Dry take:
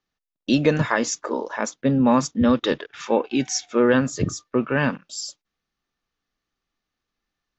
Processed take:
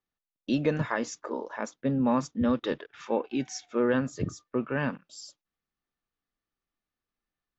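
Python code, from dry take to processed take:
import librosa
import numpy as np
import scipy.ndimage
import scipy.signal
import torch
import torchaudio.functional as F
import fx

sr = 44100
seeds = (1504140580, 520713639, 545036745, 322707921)

y = fx.high_shelf(x, sr, hz=3600.0, db=-8.0)
y = y * 10.0 ** (-7.5 / 20.0)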